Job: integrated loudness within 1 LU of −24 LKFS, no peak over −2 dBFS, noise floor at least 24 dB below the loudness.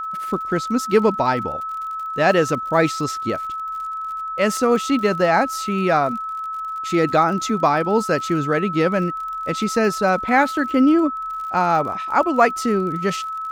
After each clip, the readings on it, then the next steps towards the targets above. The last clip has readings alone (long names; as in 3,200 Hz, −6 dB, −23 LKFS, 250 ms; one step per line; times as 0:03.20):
crackle rate 51 per second; interfering tone 1,300 Hz; level of the tone −25 dBFS; integrated loudness −20.0 LKFS; sample peak −2.0 dBFS; target loudness −24.0 LKFS
→ click removal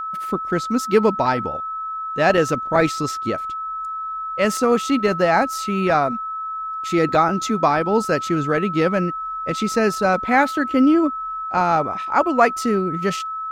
crackle rate 0 per second; interfering tone 1,300 Hz; level of the tone −25 dBFS
→ notch filter 1,300 Hz, Q 30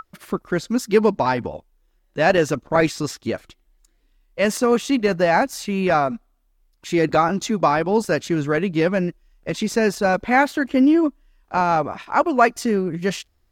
interfering tone none found; integrated loudness −20.5 LKFS; sample peak −2.0 dBFS; target loudness −24.0 LKFS
→ level −3.5 dB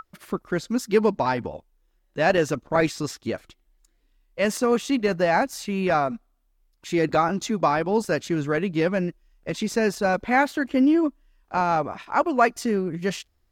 integrated loudness −24.0 LKFS; sample peak −5.5 dBFS; background noise floor −68 dBFS